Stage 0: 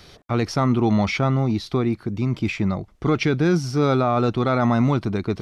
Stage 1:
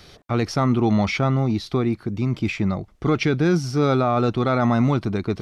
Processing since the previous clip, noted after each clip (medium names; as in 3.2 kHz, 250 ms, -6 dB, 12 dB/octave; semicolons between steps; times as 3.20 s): band-stop 980 Hz, Q 23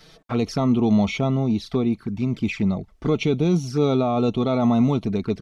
comb 4.5 ms, depth 35%; touch-sensitive flanger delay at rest 7.4 ms, full sweep at -18.5 dBFS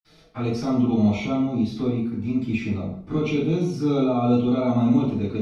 reverberation RT60 0.65 s, pre-delay 47 ms; trim +4.5 dB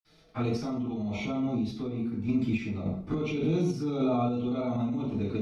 peak limiter -19 dBFS, peak gain reduction 9.5 dB; random-step tremolo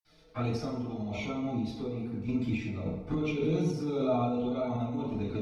flange 1.9 Hz, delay 1 ms, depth 1.3 ms, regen +49%; FDN reverb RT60 1.7 s, low-frequency decay 0.7×, high-frequency decay 0.55×, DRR 7 dB; trim +2.5 dB